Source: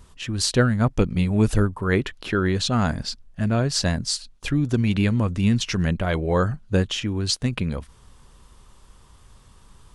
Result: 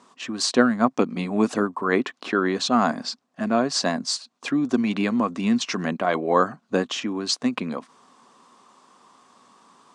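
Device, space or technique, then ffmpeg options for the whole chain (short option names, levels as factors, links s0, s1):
television speaker: -af "highpass=f=220:w=0.5412,highpass=f=220:w=1.3066,equalizer=f=250:t=q:w=4:g=6,equalizer=f=720:t=q:w=4:g=7,equalizer=f=1100:t=q:w=4:g=9,equalizer=f=3100:t=q:w=4:g=-3,lowpass=f=8100:w=0.5412,lowpass=f=8100:w=1.3066"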